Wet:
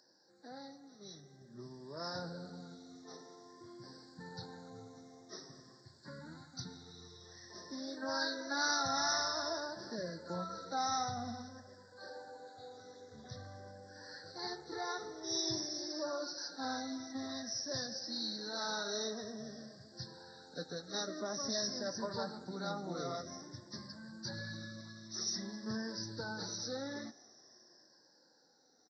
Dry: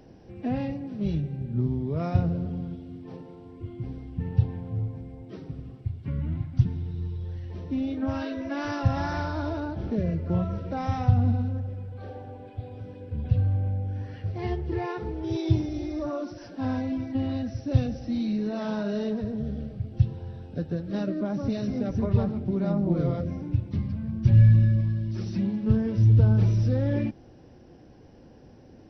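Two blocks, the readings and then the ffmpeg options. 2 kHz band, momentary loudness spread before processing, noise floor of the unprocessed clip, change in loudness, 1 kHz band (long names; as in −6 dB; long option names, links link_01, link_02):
−0.5 dB, 15 LU, −50 dBFS, −12.5 dB, −3.5 dB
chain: -filter_complex "[0:a]afftfilt=real='re*pow(10,8/40*sin(2*PI*(1.3*log(max(b,1)*sr/1024/100)/log(2)-(-0.5)*(pts-256)/sr)))':imag='im*pow(10,8/40*sin(2*PI*(1.3*log(max(b,1)*sr/1024/100)/log(2)-(-0.5)*(pts-256)/sr)))':win_size=1024:overlap=0.75,highpass=150,highshelf=frequency=3700:gain=5,asplit=2[link_01][link_02];[link_02]adelay=220,highpass=300,lowpass=3400,asoftclip=type=hard:threshold=-21dB,volume=-23dB[link_03];[link_01][link_03]amix=inputs=2:normalize=0,aresample=16000,aresample=44100,dynaudnorm=framelen=180:gausssize=21:maxgain=11.5dB,asuperstop=centerf=2700:order=8:qfactor=1.3,aderivative,asplit=2[link_04][link_05];[link_05]adelay=22,volume=-13.5dB[link_06];[link_04][link_06]amix=inputs=2:normalize=0,volume=2.5dB"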